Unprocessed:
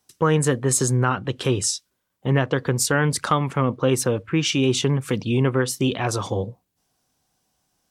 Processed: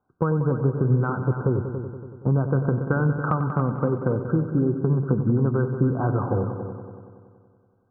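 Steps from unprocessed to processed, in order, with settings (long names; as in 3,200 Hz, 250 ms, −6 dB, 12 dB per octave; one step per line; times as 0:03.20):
linear-phase brick-wall low-pass 1,600 Hz
downward compressor, threshold −22 dBFS, peak gain reduction 8 dB
dynamic equaliser 150 Hz, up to +6 dB, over −37 dBFS, Q 0.73
echo machine with several playback heads 94 ms, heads all three, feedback 51%, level −12.5 dB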